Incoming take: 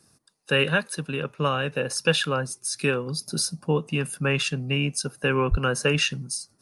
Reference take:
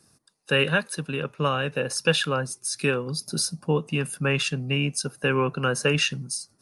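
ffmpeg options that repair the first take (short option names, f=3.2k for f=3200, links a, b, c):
-filter_complex "[0:a]asplit=3[a][b][c];[a]afade=t=out:st=5.5:d=0.02[d];[b]highpass=f=140:w=0.5412,highpass=f=140:w=1.3066,afade=t=in:st=5.5:d=0.02,afade=t=out:st=5.62:d=0.02[e];[c]afade=t=in:st=5.62:d=0.02[f];[d][e][f]amix=inputs=3:normalize=0"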